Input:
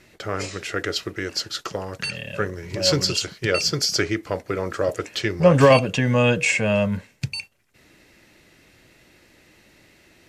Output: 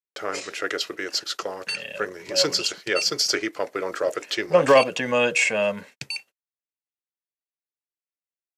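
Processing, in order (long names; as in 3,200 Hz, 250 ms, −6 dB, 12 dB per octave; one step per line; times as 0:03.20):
high-pass filter 360 Hz 12 dB per octave
noise gate −48 dBFS, range −53 dB
tempo change 1.2×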